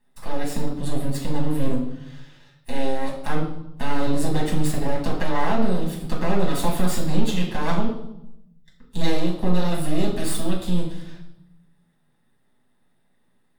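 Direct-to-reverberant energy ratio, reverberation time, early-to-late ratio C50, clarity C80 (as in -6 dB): -4.0 dB, 0.80 s, 6.0 dB, 8.5 dB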